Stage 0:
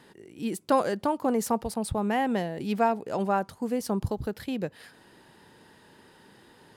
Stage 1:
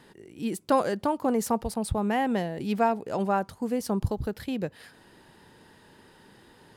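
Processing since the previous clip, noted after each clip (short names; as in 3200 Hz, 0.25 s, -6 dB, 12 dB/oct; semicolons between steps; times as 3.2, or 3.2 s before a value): low shelf 63 Hz +9.5 dB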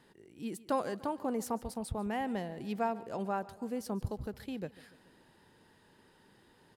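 feedback echo 0.145 s, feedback 59%, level -19 dB; gain -9 dB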